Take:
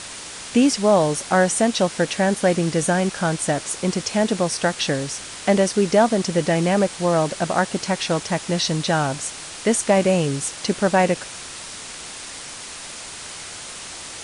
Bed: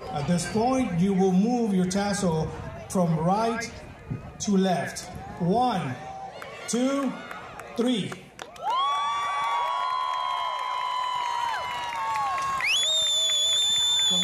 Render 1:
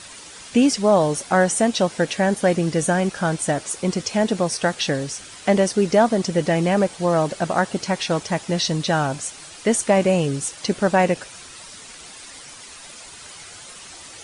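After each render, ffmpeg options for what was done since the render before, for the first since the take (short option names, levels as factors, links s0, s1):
-af "afftdn=nr=9:nf=-36"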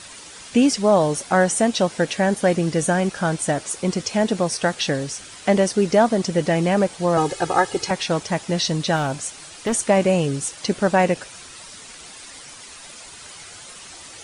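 -filter_complex "[0:a]asettb=1/sr,asplit=3[s0][s1][s2];[s0]atrim=end=7.174[s3];[s1]atrim=start=7.17:end=7.91,asetpts=PTS-STARTPTS,afade=t=in:d=0.004:c=qsin,afade=t=out:st=0.736:d=0.004:c=qsin,aecho=1:1:2.4:0.96,atrim=end_sample=32634[s4];[s2]atrim=start=7.906[s5];[s3][s4]acrossfade=d=0.004:c1=hsin:c2=qsin[s6];[s6][s5]acrossfade=d=0.004:c1=qsin:c2=hsin,asettb=1/sr,asplit=3[s7][s8][s9];[s7]atrim=end=8.964[s10];[s8]atrim=start=8.96:end=9.73,asetpts=PTS-STARTPTS,afade=t=in:d=0.004:c=qsin,afade=t=out:st=0.766:d=0.004:c=qsin,asoftclip=type=hard:threshold=0.126[s11];[s9]atrim=start=9.726[s12];[s10][s11]acrossfade=d=0.004:c1=hsin:c2=qsin[s13];[s13][s12]acrossfade=d=0.004:c1=qsin:c2=hsin"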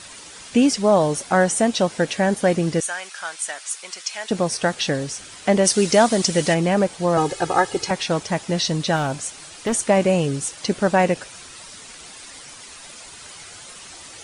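-filter_complex "[0:a]asettb=1/sr,asplit=3[s0][s1][s2];[s0]atrim=end=2.804[s3];[s1]atrim=start=2.8:end=4.31,asetpts=PTS-STARTPTS,afade=t=in:d=0.004:c=qsin,afade=t=out:st=1.506:d=0.004:c=qsin,highpass=1400[s4];[s2]atrim=start=4.306[s5];[s3][s4]acrossfade=d=0.004:c1=hsin:c2=qsin[s6];[s6][s5]acrossfade=d=0.004:c1=qsin:c2=hsin,asplit=3[s7][s8][s9];[s7]afade=t=out:st=5.64:d=0.02[s10];[s8]highshelf=f=2500:g=11.5,afade=t=in:st=5.64:d=0.02,afade=t=out:st=6.53:d=0.02[s11];[s9]afade=t=in:st=6.53:d=0.02[s12];[s10][s11][s12]amix=inputs=3:normalize=0"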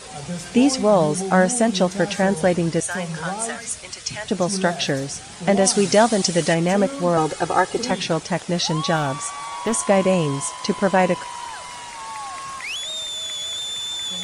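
-filter_complex "[1:a]volume=0.531[s0];[0:a][s0]amix=inputs=2:normalize=0"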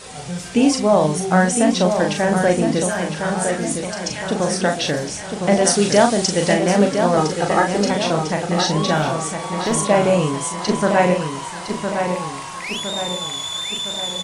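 -filter_complex "[0:a]asplit=2[s0][s1];[s1]adelay=39,volume=0.562[s2];[s0][s2]amix=inputs=2:normalize=0,asplit=2[s3][s4];[s4]adelay=1010,lowpass=f=3600:p=1,volume=0.501,asplit=2[s5][s6];[s6]adelay=1010,lowpass=f=3600:p=1,volume=0.53,asplit=2[s7][s8];[s8]adelay=1010,lowpass=f=3600:p=1,volume=0.53,asplit=2[s9][s10];[s10]adelay=1010,lowpass=f=3600:p=1,volume=0.53,asplit=2[s11][s12];[s12]adelay=1010,lowpass=f=3600:p=1,volume=0.53,asplit=2[s13][s14];[s14]adelay=1010,lowpass=f=3600:p=1,volume=0.53,asplit=2[s15][s16];[s16]adelay=1010,lowpass=f=3600:p=1,volume=0.53[s17];[s3][s5][s7][s9][s11][s13][s15][s17]amix=inputs=8:normalize=0"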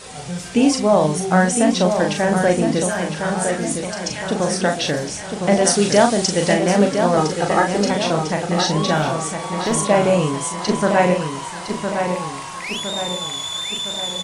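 -af anull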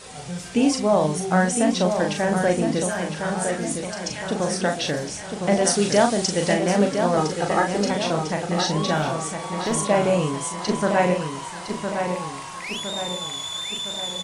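-af "volume=0.631"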